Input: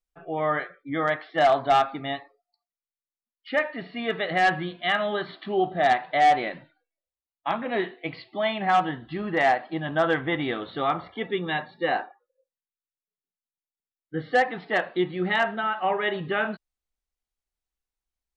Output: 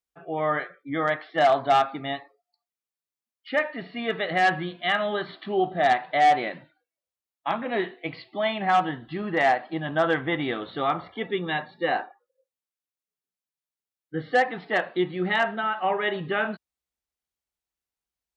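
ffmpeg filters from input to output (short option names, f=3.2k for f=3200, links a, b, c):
-af "highpass=75"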